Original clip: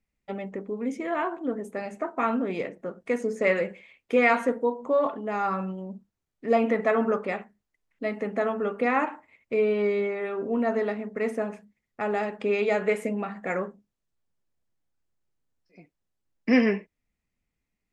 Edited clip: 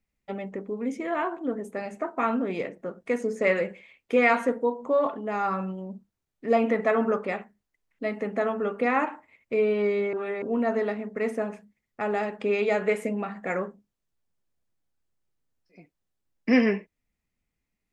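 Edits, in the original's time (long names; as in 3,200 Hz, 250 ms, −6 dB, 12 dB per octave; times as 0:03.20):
0:10.13–0:10.42: reverse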